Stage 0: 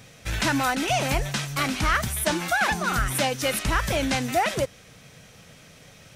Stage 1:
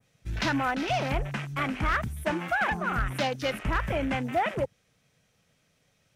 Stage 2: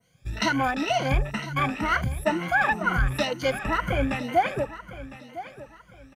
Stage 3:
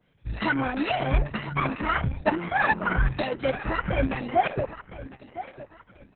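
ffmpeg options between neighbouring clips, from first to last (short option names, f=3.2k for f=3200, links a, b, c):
-af "afwtdn=0.0251,adynamicequalizer=threshold=0.0112:dfrequency=4500:dqfactor=0.7:tfrequency=4500:tqfactor=0.7:attack=5:release=100:ratio=0.375:range=2:mode=cutabove:tftype=bell,asoftclip=type=hard:threshold=-16dB,volume=-3dB"
-af "afftfilt=real='re*pow(10,16/40*sin(2*PI*(1.9*log(max(b,1)*sr/1024/100)/log(2)-(2.1)*(pts-256)/sr)))':imag='im*pow(10,16/40*sin(2*PI*(1.9*log(max(b,1)*sr/1024/100)/log(2)-(2.1)*(pts-256)/sr)))':win_size=1024:overlap=0.75,aecho=1:1:1006|2012|3018:0.178|0.0551|0.0171"
-af "highshelf=f=3.5k:g=-9,bandreject=f=234.4:t=h:w=4,bandreject=f=468.8:t=h:w=4,bandreject=f=703.2:t=h:w=4,bandreject=f=937.6:t=h:w=4,bandreject=f=1.172k:t=h:w=4,volume=1dB" -ar 48000 -c:a libopus -b:a 6k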